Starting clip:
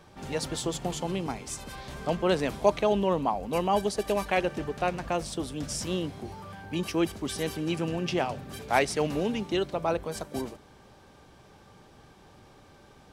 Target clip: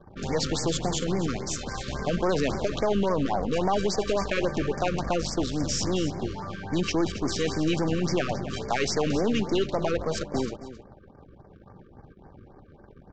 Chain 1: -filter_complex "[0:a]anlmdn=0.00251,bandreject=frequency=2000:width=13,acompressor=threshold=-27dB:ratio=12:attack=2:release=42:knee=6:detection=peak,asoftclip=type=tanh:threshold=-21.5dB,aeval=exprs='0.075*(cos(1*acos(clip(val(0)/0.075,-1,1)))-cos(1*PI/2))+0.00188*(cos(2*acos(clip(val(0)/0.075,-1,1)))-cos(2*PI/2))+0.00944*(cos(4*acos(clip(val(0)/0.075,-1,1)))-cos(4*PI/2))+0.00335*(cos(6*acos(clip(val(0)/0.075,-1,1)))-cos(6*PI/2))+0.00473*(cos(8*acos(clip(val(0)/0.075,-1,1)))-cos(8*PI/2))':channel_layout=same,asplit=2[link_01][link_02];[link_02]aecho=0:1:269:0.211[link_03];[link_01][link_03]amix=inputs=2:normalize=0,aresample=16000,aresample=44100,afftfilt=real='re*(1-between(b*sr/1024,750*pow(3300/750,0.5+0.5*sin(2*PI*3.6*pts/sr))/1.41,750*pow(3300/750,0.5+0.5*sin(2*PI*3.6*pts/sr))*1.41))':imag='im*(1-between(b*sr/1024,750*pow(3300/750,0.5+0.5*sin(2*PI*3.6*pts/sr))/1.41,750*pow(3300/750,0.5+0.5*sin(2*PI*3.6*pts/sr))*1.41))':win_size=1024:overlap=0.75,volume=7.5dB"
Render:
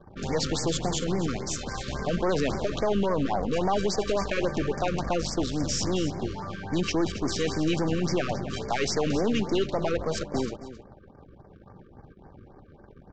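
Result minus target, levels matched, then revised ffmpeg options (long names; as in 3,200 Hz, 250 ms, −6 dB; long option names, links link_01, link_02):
soft clipping: distortion +14 dB
-filter_complex "[0:a]anlmdn=0.00251,bandreject=frequency=2000:width=13,acompressor=threshold=-27dB:ratio=12:attack=2:release=42:knee=6:detection=peak,asoftclip=type=tanh:threshold=-13.5dB,aeval=exprs='0.075*(cos(1*acos(clip(val(0)/0.075,-1,1)))-cos(1*PI/2))+0.00188*(cos(2*acos(clip(val(0)/0.075,-1,1)))-cos(2*PI/2))+0.00944*(cos(4*acos(clip(val(0)/0.075,-1,1)))-cos(4*PI/2))+0.00335*(cos(6*acos(clip(val(0)/0.075,-1,1)))-cos(6*PI/2))+0.00473*(cos(8*acos(clip(val(0)/0.075,-1,1)))-cos(8*PI/2))':channel_layout=same,asplit=2[link_01][link_02];[link_02]aecho=0:1:269:0.211[link_03];[link_01][link_03]amix=inputs=2:normalize=0,aresample=16000,aresample=44100,afftfilt=real='re*(1-between(b*sr/1024,750*pow(3300/750,0.5+0.5*sin(2*PI*3.6*pts/sr))/1.41,750*pow(3300/750,0.5+0.5*sin(2*PI*3.6*pts/sr))*1.41))':imag='im*(1-between(b*sr/1024,750*pow(3300/750,0.5+0.5*sin(2*PI*3.6*pts/sr))/1.41,750*pow(3300/750,0.5+0.5*sin(2*PI*3.6*pts/sr))*1.41))':win_size=1024:overlap=0.75,volume=7.5dB"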